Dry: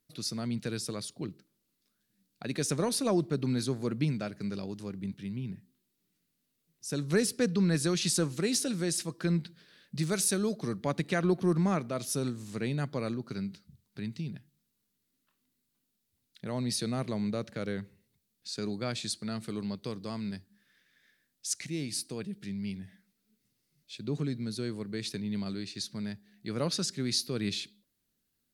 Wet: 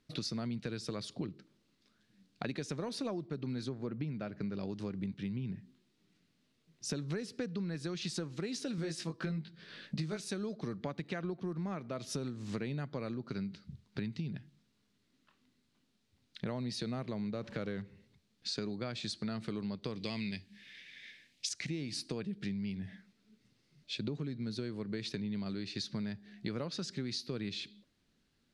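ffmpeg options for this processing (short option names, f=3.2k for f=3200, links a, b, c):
-filter_complex "[0:a]asettb=1/sr,asplit=3[a][b][c];[a]atrim=end=3.694[d];[b]atrim=start=3.69:end=4.6,asetpts=PTS-STARTPTS,afade=t=in:d=0.004:c=qsin,afade=t=out:st=0.906:d=0.004:c=qsin,lowpass=f=2.5k:p=1[e];[c]atrim=start=4.596[f];[d][e]acrossfade=d=0.004:c1=hsin:c2=qsin[g];[g][f]acrossfade=d=0.004:c1=qsin:c2=hsin,asettb=1/sr,asplit=3[h][i][j];[h]atrim=end=8.764[k];[i]atrim=start=8.76:end=10.2,asetpts=PTS-STARTPTS,afade=t=in:d=0.004:c=qsin,afade=t=out:st=1.436:d=0.004:c=qsin,asplit=2[l][m];[m]adelay=19,volume=-2dB[n];[l][n]amix=inputs=2:normalize=0,atrim=end_sample=63504[o];[j]atrim=start=10.196[p];[k][o]acrossfade=d=0.004:c1=hsin:c2=qsin[q];[q][p]acrossfade=d=0.004:c1=qsin:c2=hsin,asettb=1/sr,asplit=3[r][s][t];[r]atrim=end=17.354[u];[s]atrim=start=17.35:end=17.82,asetpts=PTS-STARTPTS,afade=t=in:d=0.004:c=qsin,afade=t=out:st=0.466:d=0.004:c=qsin,aeval=exprs='val(0)+0.5*0.00355*sgn(val(0))':c=same[v];[t]atrim=start=17.816[w];[u][v]acrossfade=d=0.004:c1=hsin:c2=qsin[x];[x][w]acrossfade=d=0.004:c1=qsin:c2=hsin,asettb=1/sr,asplit=3[y][z][aa];[y]atrim=end=19.954[ab];[z]atrim=start=19.95:end=21.49,asetpts=PTS-STARTPTS,afade=t=in:d=0.004:c=qsin,afade=t=out:st=1.536:d=0.004:c=qsin,highshelf=f=1.8k:t=q:w=3:g=7.5[ac];[aa]atrim=start=21.486[ad];[ab][ac]acrossfade=d=0.004:c1=hsin:c2=qsin[ae];[ae][ad]acrossfade=d=0.004:c1=qsin:c2=hsin,lowpass=4.5k,acompressor=threshold=-43dB:ratio=16,volume=8.5dB"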